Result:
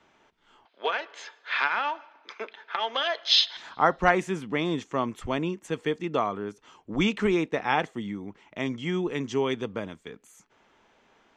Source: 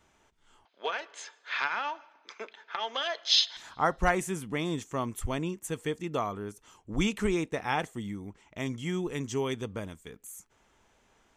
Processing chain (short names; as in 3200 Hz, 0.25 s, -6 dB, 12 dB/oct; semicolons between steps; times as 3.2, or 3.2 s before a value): three-band isolator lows -13 dB, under 150 Hz, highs -23 dB, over 5300 Hz; gain +5 dB